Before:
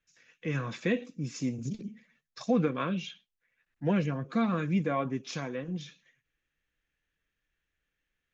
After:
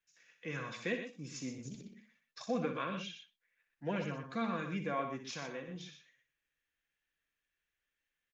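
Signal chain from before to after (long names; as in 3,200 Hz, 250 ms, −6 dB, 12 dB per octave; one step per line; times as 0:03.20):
low-shelf EQ 350 Hz −10.5 dB
notch filter 1,300 Hz, Q 29
on a send: loudspeakers that aren't time-aligned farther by 21 metres −9 dB, 42 metres −9 dB
on the sum: level −4 dB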